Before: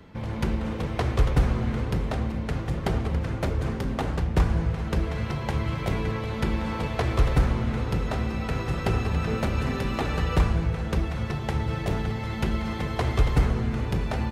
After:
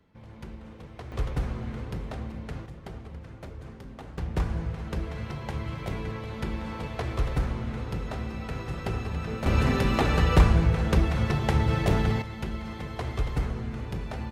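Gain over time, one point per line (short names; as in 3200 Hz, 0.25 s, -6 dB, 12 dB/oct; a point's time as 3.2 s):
-15.5 dB
from 1.12 s -8 dB
from 2.66 s -15 dB
from 4.18 s -6 dB
from 9.46 s +3.5 dB
from 12.22 s -7 dB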